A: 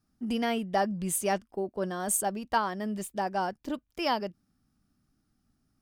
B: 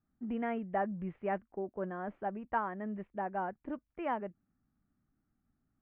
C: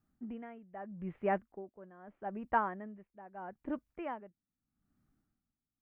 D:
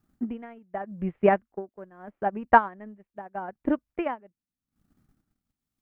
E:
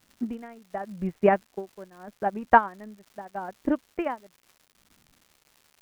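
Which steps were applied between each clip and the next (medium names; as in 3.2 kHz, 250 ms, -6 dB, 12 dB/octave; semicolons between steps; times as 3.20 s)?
steep low-pass 2.2 kHz 36 dB/octave; trim -6 dB
logarithmic tremolo 0.79 Hz, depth 19 dB; trim +3 dB
transient shaper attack +9 dB, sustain -10 dB; trim +7 dB
crackle 310 per s -45 dBFS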